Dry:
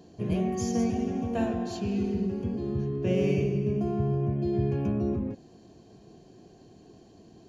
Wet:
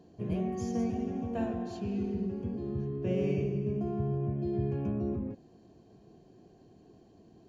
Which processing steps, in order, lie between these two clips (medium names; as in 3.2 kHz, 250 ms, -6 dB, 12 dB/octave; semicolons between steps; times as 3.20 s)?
treble shelf 2.8 kHz -8 dB; trim -4.5 dB